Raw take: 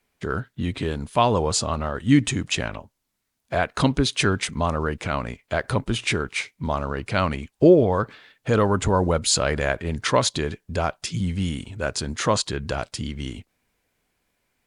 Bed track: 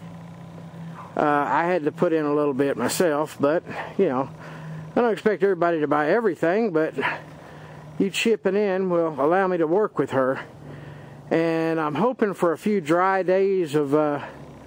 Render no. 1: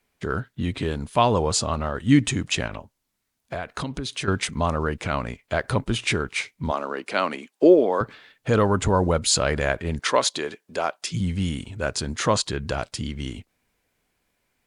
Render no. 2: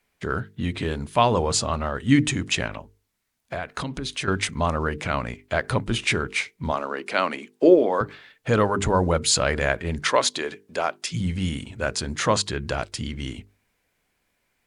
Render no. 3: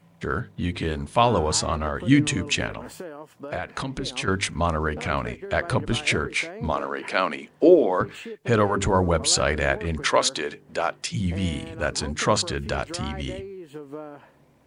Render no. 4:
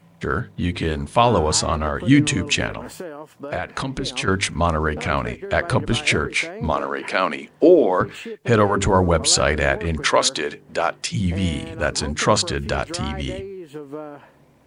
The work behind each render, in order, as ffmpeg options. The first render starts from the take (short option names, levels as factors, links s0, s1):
-filter_complex "[0:a]asettb=1/sr,asplit=3[s0][s1][s2];[s0]atrim=end=2.664[s3];[s1]atrim=start=2.66:end=4.28,asetpts=PTS-STARTPTS,afade=t=in:d=0.004:c=qsin,afade=t=out:st=1.616:d=0.004:c=qsin,acompressor=threshold=0.0501:ratio=6:attack=3.2:release=140:knee=1:detection=peak[s4];[s2]atrim=start=4.276[s5];[s3][s4]acrossfade=d=0.004:c1=hsin:c2=qsin[s6];[s6][s5]acrossfade=d=0.004:c1=qsin:c2=hsin,asettb=1/sr,asplit=3[s7][s8][s9];[s7]atrim=end=6.714[s10];[s8]atrim=start=6.71:end=8.01,asetpts=PTS-STARTPTS,afade=t=in:d=0.004:c=qsin,afade=t=out:st=1.296:d=0.004:c=qsin,highpass=f=250:w=0.5412,highpass=f=250:w=1.3066[s11];[s9]atrim=start=8.006[s12];[s10][s11]acrossfade=d=0.004:c1=hsin:c2=qsin[s13];[s13][s12]acrossfade=d=0.004:c1=qsin:c2=hsin,asettb=1/sr,asplit=3[s14][s15][s16];[s14]atrim=end=9.994[s17];[s15]atrim=start=9.99:end=11.12,asetpts=PTS-STARTPTS,afade=t=in:d=0.004:c=qsin,afade=t=out:st=1.126:d=0.004:c=qsin,highpass=340[s18];[s16]atrim=start=11.116[s19];[s17][s18]acrossfade=d=0.004:c1=hsin:c2=qsin[s20];[s20][s19]acrossfade=d=0.004:c1=qsin:c2=hsin"
-af "equalizer=f=2000:w=1.5:g=2.5,bandreject=f=50:t=h:w=6,bandreject=f=100:t=h:w=6,bandreject=f=150:t=h:w=6,bandreject=f=200:t=h:w=6,bandreject=f=250:t=h:w=6,bandreject=f=300:t=h:w=6,bandreject=f=350:t=h:w=6,bandreject=f=400:t=h:w=6,bandreject=f=450:t=h:w=6"
-filter_complex "[1:a]volume=0.141[s0];[0:a][s0]amix=inputs=2:normalize=0"
-af "volume=1.58,alimiter=limit=0.708:level=0:latency=1"